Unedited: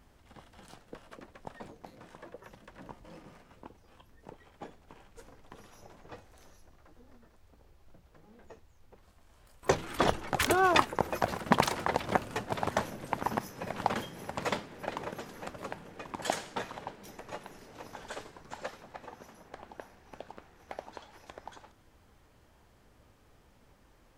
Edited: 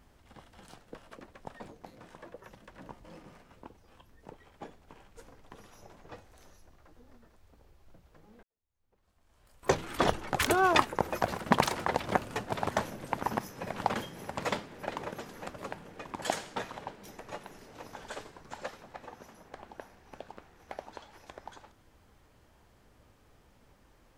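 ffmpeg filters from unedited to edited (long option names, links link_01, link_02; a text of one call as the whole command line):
ffmpeg -i in.wav -filter_complex "[0:a]asplit=2[link_01][link_02];[link_01]atrim=end=8.43,asetpts=PTS-STARTPTS,afade=type=out:start_time=8.426:duration=0.004:curve=hsin[link_03];[link_02]atrim=start=8.43,asetpts=PTS-STARTPTS,afade=type=in:duration=1.26:curve=qua[link_04];[link_03][link_04]concat=n=2:v=0:a=1" out.wav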